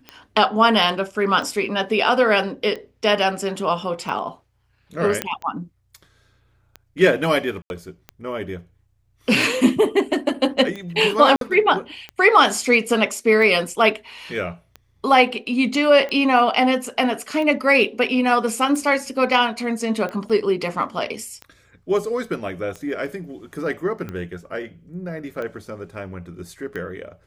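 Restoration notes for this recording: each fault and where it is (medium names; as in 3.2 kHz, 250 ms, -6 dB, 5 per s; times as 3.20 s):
tick 45 rpm -19 dBFS
5.22 s: pop -6 dBFS
7.62–7.70 s: dropout 81 ms
11.36–11.41 s: dropout 52 ms
20.29–20.30 s: dropout 6.3 ms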